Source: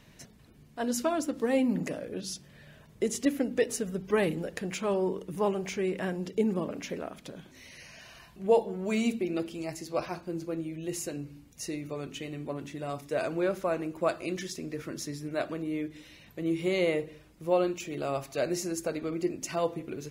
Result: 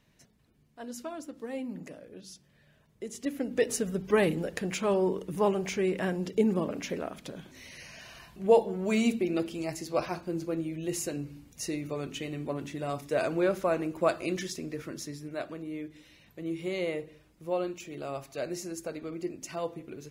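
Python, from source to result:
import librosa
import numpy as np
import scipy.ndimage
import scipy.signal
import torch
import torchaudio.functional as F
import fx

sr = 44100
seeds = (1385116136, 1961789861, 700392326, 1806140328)

y = fx.gain(x, sr, db=fx.line((3.05, -10.5), (3.7, 2.0), (14.36, 2.0), (15.47, -5.0)))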